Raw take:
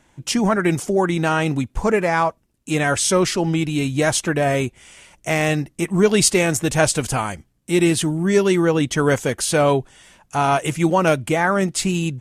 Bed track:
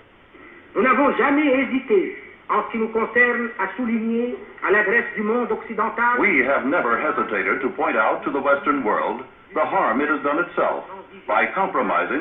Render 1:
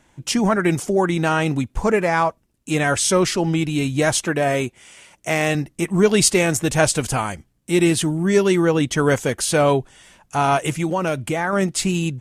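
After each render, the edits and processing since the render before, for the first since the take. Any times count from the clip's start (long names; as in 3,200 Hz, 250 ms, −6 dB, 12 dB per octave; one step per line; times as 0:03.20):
0:04.24–0:05.55: high-pass filter 150 Hz 6 dB per octave
0:10.70–0:11.53: downward compressor 2.5 to 1, threshold −19 dBFS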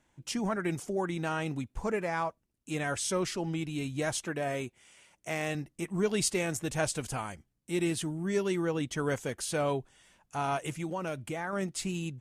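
level −13.5 dB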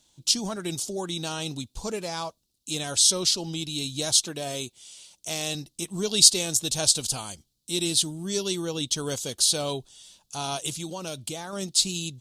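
high shelf with overshoot 2,800 Hz +12.5 dB, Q 3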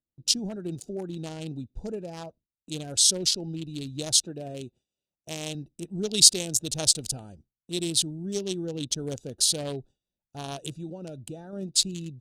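adaptive Wiener filter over 41 samples
noise gate with hold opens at −47 dBFS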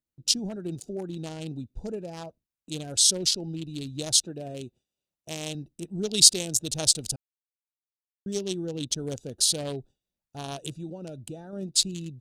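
0:07.16–0:08.26: silence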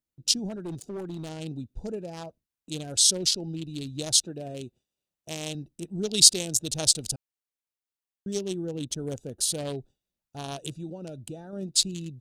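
0:00.57–0:01.29: hard clipping −31 dBFS
0:08.41–0:09.58: parametric band 4,500 Hz −7 dB 1.4 octaves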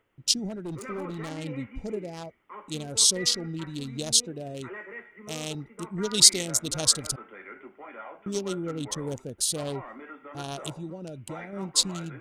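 mix in bed track −23.5 dB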